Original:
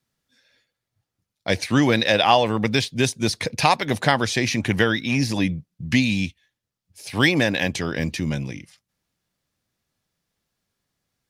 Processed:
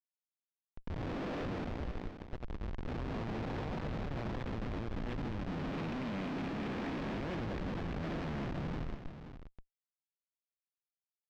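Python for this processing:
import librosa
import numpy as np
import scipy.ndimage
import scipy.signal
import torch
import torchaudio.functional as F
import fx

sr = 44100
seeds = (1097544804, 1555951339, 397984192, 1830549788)

p1 = fx.spec_blur(x, sr, span_ms=1280.0)
p2 = scipy.signal.sosfilt(scipy.signal.butter(2, 190.0, 'highpass', fs=sr, output='sos'), p1)
p3 = fx.high_shelf(p2, sr, hz=9500.0, db=-9.0)
p4 = fx.hum_notches(p3, sr, base_hz=60, count=9)
p5 = fx.over_compress(p4, sr, threshold_db=-33.0, ratio=-0.5)
p6 = fx.echo_feedback(p5, sr, ms=191, feedback_pct=25, wet_db=-11.0)
p7 = fx.schmitt(p6, sr, flips_db=-32.0)
p8 = fx.air_absorb(p7, sr, metres=210.0)
p9 = p8 + fx.echo_single(p8, sr, ms=528, db=-10.5, dry=0)
y = p9 * librosa.db_to_amplitude(-2.5)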